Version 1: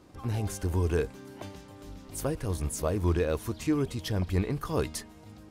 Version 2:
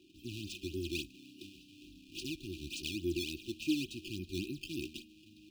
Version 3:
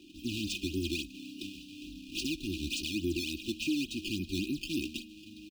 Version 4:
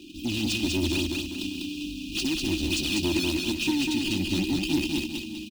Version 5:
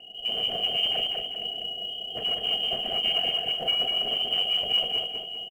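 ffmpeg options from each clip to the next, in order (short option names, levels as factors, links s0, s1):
-filter_complex "[0:a]acrusher=samples=13:mix=1:aa=0.000001:lfo=1:lforange=20.8:lforate=3.5,acrossover=split=350 4500:gain=0.1 1 0.251[s0][s1][s2];[s0][s1][s2]amix=inputs=3:normalize=0,afftfilt=real='re*(1-between(b*sr/4096,380,2400))':imag='im*(1-between(b*sr/4096,380,2400))':win_size=4096:overlap=0.75,volume=1.33"
-af "equalizer=f=12000:w=3.7:g=-3,aecho=1:1:4:0.5,alimiter=level_in=2.24:limit=0.0631:level=0:latency=1:release=202,volume=0.447,volume=2.51"
-filter_complex "[0:a]asoftclip=type=tanh:threshold=0.0299,asplit=2[s0][s1];[s1]aecho=0:1:197|394|591|788|985:0.708|0.283|0.113|0.0453|0.0181[s2];[s0][s2]amix=inputs=2:normalize=0,volume=2.82"
-filter_complex "[0:a]asplit=2[s0][s1];[s1]adelay=45,volume=0.266[s2];[s0][s2]amix=inputs=2:normalize=0,lowpass=f=2700:t=q:w=0.5098,lowpass=f=2700:t=q:w=0.6013,lowpass=f=2700:t=q:w=0.9,lowpass=f=2700:t=q:w=2.563,afreqshift=-3200,acrusher=bits=8:mode=log:mix=0:aa=0.000001"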